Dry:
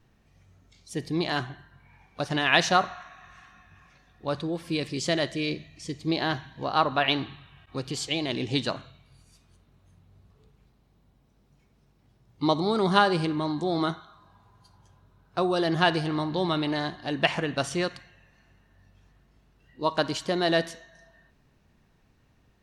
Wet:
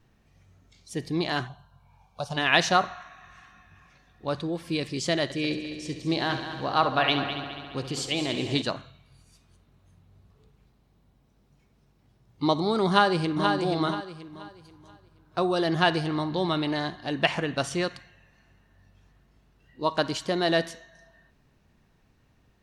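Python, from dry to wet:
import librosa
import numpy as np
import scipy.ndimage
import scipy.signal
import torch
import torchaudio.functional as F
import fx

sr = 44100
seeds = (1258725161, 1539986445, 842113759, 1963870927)

y = fx.fixed_phaser(x, sr, hz=790.0, stages=4, at=(1.47, 2.36), fade=0.02)
y = fx.echo_heads(y, sr, ms=69, heads='first and third', feedback_pct=63, wet_db=-11, at=(5.23, 8.62))
y = fx.echo_throw(y, sr, start_s=12.88, length_s=0.64, ms=480, feedback_pct=30, wet_db=-5.5)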